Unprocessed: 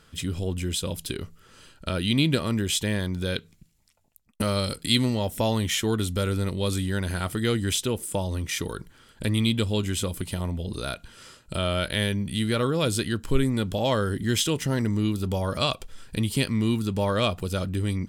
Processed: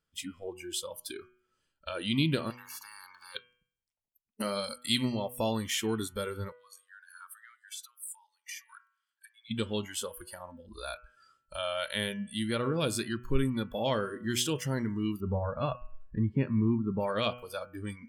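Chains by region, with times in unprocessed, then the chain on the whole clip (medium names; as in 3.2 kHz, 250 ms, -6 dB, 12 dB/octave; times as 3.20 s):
2.50–3.35 s: three-band isolator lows -12 dB, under 500 Hz, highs -21 dB, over 2.6 kHz + spectrum-flattening compressor 10:1
6.52–9.51 s: compression 16:1, threshold -30 dBFS + high-pass 1.1 kHz 24 dB/octave + tape noise reduction on one side only decoder only
15.20–17.00 s: low-pass 1.6 kHz + bass shelf 400 Hz +3.5 dB
whole clip: band-stop 3.9 kHz, Q 16; spectral noise reduction 23 dB; de-hum 122.7 Hz, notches 26; trim -5 dB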